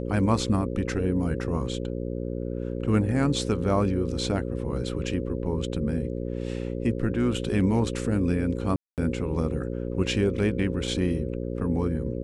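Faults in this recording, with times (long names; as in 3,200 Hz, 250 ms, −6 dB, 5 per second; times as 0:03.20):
mains buzz 60 Hz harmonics 9 −31 dBFS
0:08.76–0:08.98: drop-out 218 ms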